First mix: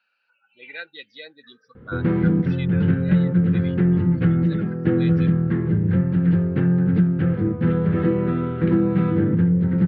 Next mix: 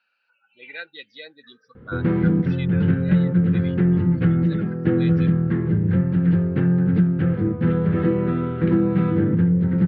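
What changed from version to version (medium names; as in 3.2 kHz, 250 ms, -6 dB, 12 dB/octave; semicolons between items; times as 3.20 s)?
no change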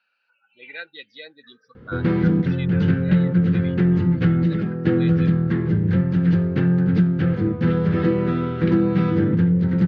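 background: remove distance through air 350 m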